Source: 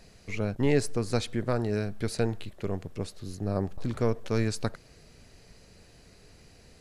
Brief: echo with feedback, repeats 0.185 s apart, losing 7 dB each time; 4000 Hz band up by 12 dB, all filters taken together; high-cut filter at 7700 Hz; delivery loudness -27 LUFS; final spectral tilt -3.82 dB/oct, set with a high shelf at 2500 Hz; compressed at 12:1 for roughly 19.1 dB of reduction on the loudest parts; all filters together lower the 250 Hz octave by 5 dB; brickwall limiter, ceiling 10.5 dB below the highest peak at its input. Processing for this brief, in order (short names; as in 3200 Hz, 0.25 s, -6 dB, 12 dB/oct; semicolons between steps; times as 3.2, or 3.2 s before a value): LPF 7700 Hz; bell 250 Hz -6.5 dB; high shelf 2500 Hz +7 dB; bell 4000 Hz +8.5 dB; compressor 12:1, threshold -41 dBFS; limiter -37.5 dBFS; feedback echo 0.185 s, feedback 45%, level -7 dB; gain +20.5 dB